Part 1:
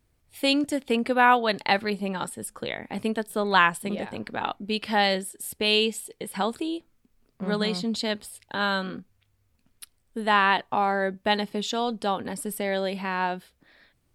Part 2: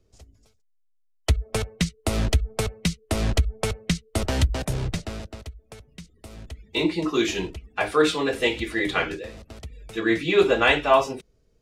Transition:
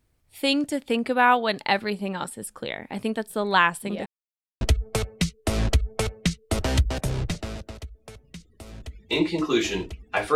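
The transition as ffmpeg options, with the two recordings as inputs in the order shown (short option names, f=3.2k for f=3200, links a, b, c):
-filter_complex "[0:a]apad=whole_dur=10.35,atrim=end=10.35,asplit=2[a][b];[a]atrim=end=4.06,asetpts=PTS-STARTPTS,afade=t=out:st=4.056:d=0.004:c=hsin[c];[b]atrim=start=4.06:end=4.61,asetpts=PTS-STARTPTS,volume=0[d];[1:a]atrim=start=2.25:end=7.99,asetpts=PTS-STARTPTS,afade=t=in:d=0.004:c=hsin[e];[c][d][e]concat=n=3:v=0:a=1"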